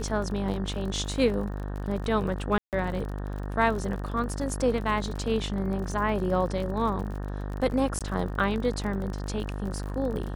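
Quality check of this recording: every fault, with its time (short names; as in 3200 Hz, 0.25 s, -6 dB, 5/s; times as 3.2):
buzz 50 Hz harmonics 37 -33 dBFS
crackle 41/s -34 dBFS
2.58–2.73 gap 0.148 s
7.99–8.01 gap 17 ms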